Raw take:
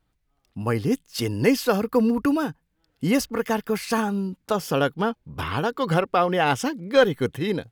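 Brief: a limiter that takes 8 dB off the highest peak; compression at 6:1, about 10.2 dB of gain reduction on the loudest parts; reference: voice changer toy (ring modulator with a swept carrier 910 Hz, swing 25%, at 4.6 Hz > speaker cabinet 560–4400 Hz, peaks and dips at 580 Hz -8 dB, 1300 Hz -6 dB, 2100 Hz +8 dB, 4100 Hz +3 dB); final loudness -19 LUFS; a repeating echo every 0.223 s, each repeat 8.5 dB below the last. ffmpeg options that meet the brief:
-af "acompressor=threshold=-22dB:ratio=6,alimiter=limit=-20.5dB:level=0:latency=1,aecho=1:1:223|446|669|892:0.376|0.143|0.0543|0.0206,aeval=exprs='val(0)*sin(2*PI*910*n/s+910*0.25/4.6*sin(2*PI*4.6*n/s))':c=same,highpass=560,equalizer=f=580:t=q:w=4:g=-8,equalizer=f=1.3k:t=q:w=4:g=-6,equalizer=f=2.1k:t=q:w=4:g=8,equalizer=f=4.1k:t=q:w=4:g=3,lowpass=f=4.4k:w=0.5412,lowpass=f=4.4k:w=1.3066,volume=15dB"

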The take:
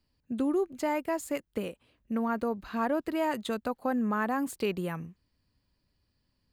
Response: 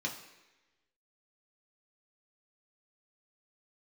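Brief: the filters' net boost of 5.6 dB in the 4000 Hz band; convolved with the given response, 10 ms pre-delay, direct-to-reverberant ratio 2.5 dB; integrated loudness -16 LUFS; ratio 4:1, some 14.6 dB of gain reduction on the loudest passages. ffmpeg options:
-filter_complex "[0:a]equalizer=f=4k:t=o:g=7.5,acompressor=threshold=-43dB:ratio=4,asplit=2[a][b];[1:a]atrim=start_sample=2205,adelay=10[c];[b][c]afir=irnorm=-1:irlink=0,volume=-5.5dB[d];[a][d]amix=inputs=2:normalize=0,volume=26.5dB"

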